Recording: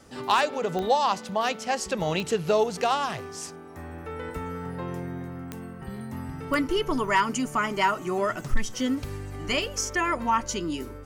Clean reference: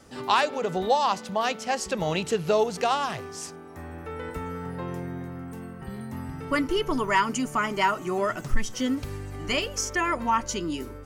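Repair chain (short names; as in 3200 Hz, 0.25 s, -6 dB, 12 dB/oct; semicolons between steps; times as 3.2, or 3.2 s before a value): clip repair -12.5 dBFS; de-click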